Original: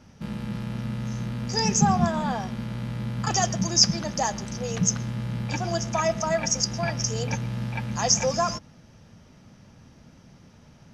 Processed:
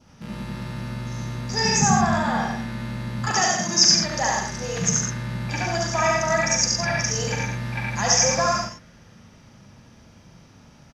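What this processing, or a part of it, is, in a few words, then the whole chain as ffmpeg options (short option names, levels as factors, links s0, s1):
slapback doubling: -filter_complex "[0:a]asettb=1/sr,asplit=3[s0][s1][s2];[s0]atrim=end=3.194[s3];[s1]atrim=start=3.19:end=3.94,asetpts=PTS-STARTPTS,afade=t=in:d=0.004:c=qsin,afade=t=out:st=0.746:d=0.004:c=qsin,highpass=f=160:w=0.5412,highpass=f=160:w=1.3066[s4];[s2]atrim=start=3.936[s5];[s3][s4]acrossfade=d=0.004:c1=hsin:c2=qsin[s6];[s6][s5]acrossfade=d=0.004:c1=qsin:c2=hsin,asplit=3[s7][s8][s9];[s8]adelay=40,volume=0.355[s10];[s9]adelay=92,volume=0.501[s11];[s7][s10][s11]amix=inputs=3:normalize=0,lowshelf=f=450:g=-3.5,aecho=1:1:69.97|110.8:0.794|0.562,adynamicequalizer=threshold=0.00562:dfrequency=1800:dqfactor=2.2:tfrequency=1800:tqfactor=2.2:attack=5:release=100:ratio=0.375:range=3.5:mode=boostabove:tftype=bell"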